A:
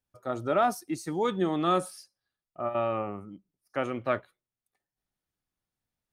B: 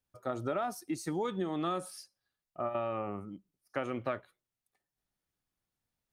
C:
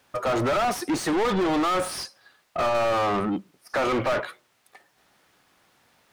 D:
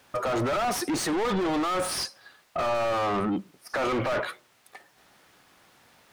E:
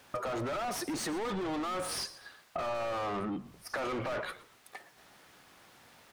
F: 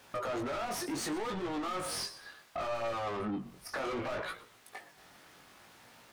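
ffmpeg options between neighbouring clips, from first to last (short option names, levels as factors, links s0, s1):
-af "acompressor=threshold=0.0316:ratio=10"
-filter_complex "[0:a]asplit=2[s0][s1];[s1]highpass=f=720:p=1,volume=70.8,asoftclip=type=tanh:threshold=0.112[s2];[s0][s2]amix=inputs=2:normalize=0,lowpass=f=2000:p=1,volume=0.501,volume=1.41"
-af "alimiter=level_in=1.33:limit=0.0631:level=0:latency=1:release=19,volume=0.75,volume=1.58"
-filter_complex "[0:a]acompressor=threshold=0.02:ratio=6,asplit=4[s0][s1][s2][s3];[s1]adelay=119,afreqshift=-69,volume=0.141[s4];[s2]adelay=238,afreqshift=-138,volume=0.0479[s5];[s3]adelay=357,afreqshift=-207,volume=0.0164[s6];[s0][s4][s5][s6]amix=inputs=4:normalize=0"
-af "flanger=delay=17:depth=5.6:speed=0.67,asoftclip=type=tanh:threshold=0.02,volume=1.58"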